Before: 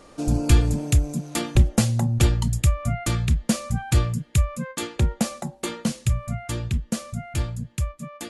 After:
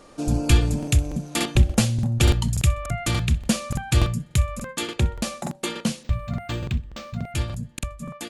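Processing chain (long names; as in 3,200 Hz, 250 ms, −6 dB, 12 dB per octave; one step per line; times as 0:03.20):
notch filter 2,000 Hz, Q 28
dynamic equaliser 2,900 Hz, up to +5 dB, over −44 dBFS, Q 1.2
mains-hum notches 50/100 Hz
repeating echo 63 ms, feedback 28%, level −20.5 dB
regular buffer underruns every 0.29 s, samples 2,048, repeat, from 0:00.78
0:06.03–0:07.32: linearly interpolated sample-rate reduction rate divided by 4×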